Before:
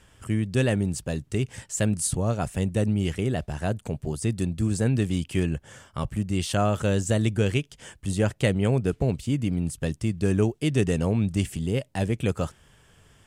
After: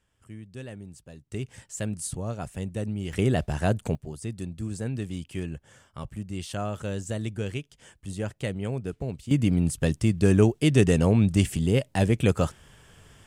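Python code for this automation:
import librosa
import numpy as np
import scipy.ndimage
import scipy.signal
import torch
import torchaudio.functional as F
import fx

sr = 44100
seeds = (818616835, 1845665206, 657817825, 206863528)

y = fx.gain(x, sr, db=fx.steps((0.0, -17.0), (1.32, -7.0), (3.13, 3.0), (3.95, -8.0), (9.31, 3.5)))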